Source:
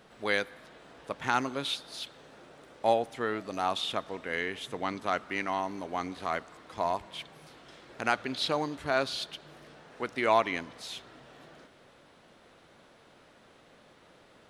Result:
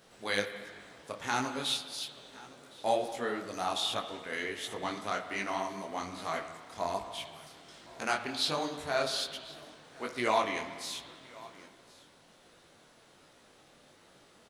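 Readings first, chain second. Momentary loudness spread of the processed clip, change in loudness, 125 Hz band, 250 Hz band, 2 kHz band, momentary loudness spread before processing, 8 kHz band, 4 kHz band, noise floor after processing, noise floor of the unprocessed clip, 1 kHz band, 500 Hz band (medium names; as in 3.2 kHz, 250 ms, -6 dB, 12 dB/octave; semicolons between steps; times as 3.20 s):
19 LU, -2.0 dB, -3.5 dB, -3.0 dB, -3.0 dB, 15 LU, +5.5 dB, +1.0 dB, -61 dBFS, -59 dBFS, -3.0 dB, -3.0 dB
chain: tone controls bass 0 dB, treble +10 dB; delay 1065 ms -21.5 dB; spring tank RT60 1.7 s, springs 49/55 ms, chirp 30 ms, DRR 8.5 dB; detune thickener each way 44 cents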